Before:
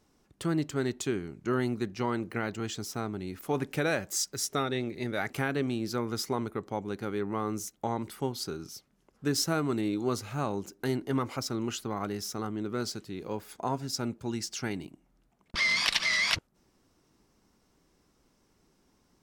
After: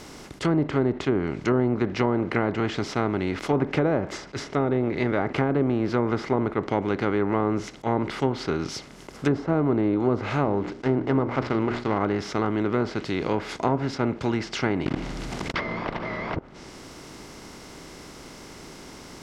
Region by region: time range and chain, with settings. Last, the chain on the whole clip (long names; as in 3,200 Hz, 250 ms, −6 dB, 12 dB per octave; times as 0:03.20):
0:10.44–0:11.98: running median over 15 samples + Savitzky-Golay smoothing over 9 samples + mains-hum notches 60/120/180/240/300/360/420 Hz
0:14.86–0:15.55: one scale factor per block 3 bits + low-shelf EQ 240 Hz +11 dB + envelope flattener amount 50%
whole clip: compressor on every frequency bin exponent 0.6; treble cut that deepens with the level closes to 810 Hz, closed at −22 dBFS; level that may rise only so fast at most 470 dB per second; level +5 dB